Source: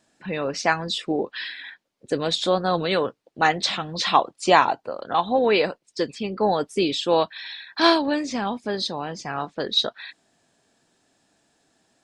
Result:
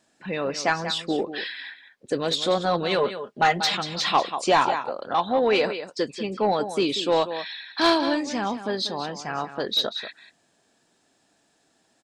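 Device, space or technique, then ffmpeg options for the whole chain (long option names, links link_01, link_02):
saturation between pre-emphasis and de-emphasis: -filter_complex "[0:a]lowshelf=frequency=120:gain=-6,asettb=1/sr,asplit=3[link_01][link_02][link_03];[link_01]atrim=end=2.984[link_04];[link_02]atrim=start=2.98:end=3.77,asetpts=PTS-STARTPTS,afade=type=in:duration=0.004:curve=qsin,afade=type=out:start_time=0.786:duration=0.004:curve=qsin,aecho=1:1:4.9:0.74,atrim=end_sample=34839[link_05];[link_03]atrim=start=3.766[link_06];[link_04][link_05]acrossfade=duration=0.004:curve1=hsin:curve2=qsin[link_07];[link_07][link_06]acrossfade=duration=0.004:curve1=qsin:curve2=hsin,highshelf=frequency=6600:gain=12,aecho=1:1:188:0.251,asoftclip=type=tanh:threshold=-11dB,highshelf=frequency=6600:gain=-12"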